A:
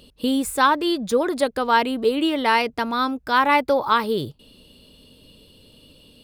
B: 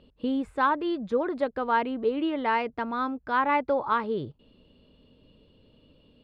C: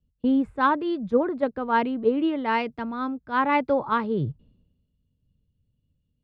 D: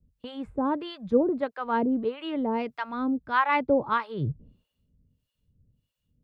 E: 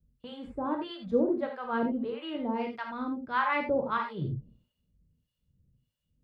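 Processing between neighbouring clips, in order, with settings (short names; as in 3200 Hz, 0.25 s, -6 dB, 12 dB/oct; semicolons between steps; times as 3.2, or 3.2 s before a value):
LPF 2000 Hz 12 dB/oct; gain -6 dB
bell 160 Hz +9.5 dB 1.8 oct; three-band expander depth 100%
in parallel at +3 dB: compressor, threshold -32 dBFS, peak gain reduction 15.5 dB; on the sum: harmonic tremolo 1.6 Hz, depth 100%, crossover 720 Hz
reverb, pre-delay 3 ms, DRR 2 dB; gain -6 dB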